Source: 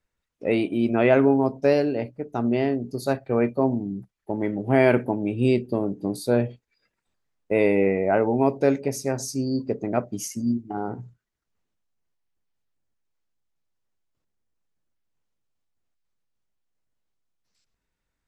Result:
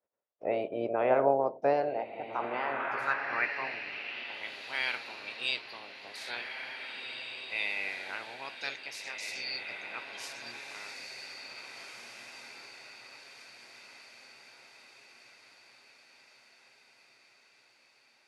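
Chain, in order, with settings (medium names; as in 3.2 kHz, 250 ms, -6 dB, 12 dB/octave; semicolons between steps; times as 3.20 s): spectral peaks clipped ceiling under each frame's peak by 19 dB; echo that smears into a reverb 1824 ms, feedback 52%, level -4.5 dB; band-pass sweep 590 Hz -> 3.8 kHz, 1.70–4.56 s; trim -1.5 dB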